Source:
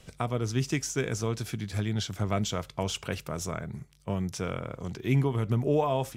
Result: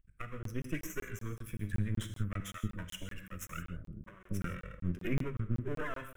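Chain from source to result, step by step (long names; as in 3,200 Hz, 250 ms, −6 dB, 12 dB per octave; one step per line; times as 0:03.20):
spectral dynamics exaggerated over time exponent 2
camcorder AGC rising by 17 dB per second
high-shelf EQ 7,400 Hz −8 dB
notch filter 460 Hz, Q 14
hum removal 95.72 Hz, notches 2
half-wave rectification
phaser with its sweep stopped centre 1,900 Hz, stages 4
0:02.40–0:04.45: multiband delay without the direct sound highs, lows 230 ms, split 640 Hz
reverb whose tail is shaped and stops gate 190 ms flat, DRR 7.5 dB
regular buffer underruns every 0.19 s, samples 1,024, zero, from 0:00.43
level +1.5 dB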